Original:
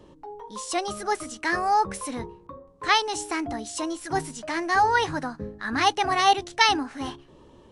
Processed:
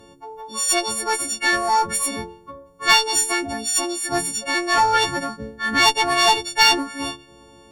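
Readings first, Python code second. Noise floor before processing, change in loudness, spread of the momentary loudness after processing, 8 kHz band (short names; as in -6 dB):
-53 dBFS, +6.0 dB, 15 LU, +13.0 dB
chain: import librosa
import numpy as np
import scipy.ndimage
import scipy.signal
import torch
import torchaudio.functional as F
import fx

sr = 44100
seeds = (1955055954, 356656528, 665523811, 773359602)

y = fx.freq_snap(x, sr, grid_st=4)
y = fx.cheby_harmonics(y, sr, harmonics=(4, 5, 6), levels_db=(-24, -23, -18), full_scale_db=-2.0)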